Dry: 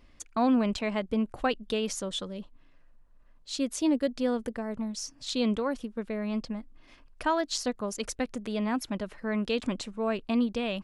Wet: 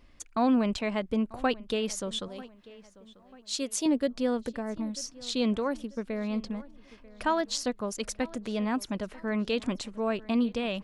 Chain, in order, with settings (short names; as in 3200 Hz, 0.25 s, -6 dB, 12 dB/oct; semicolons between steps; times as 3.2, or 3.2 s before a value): 2.28–3.86 tone controls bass -12 dB, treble +5 dB; on a send: darkening echo 0.941 s, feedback 42%, low-pass 4200 Hz, level -20.5 dB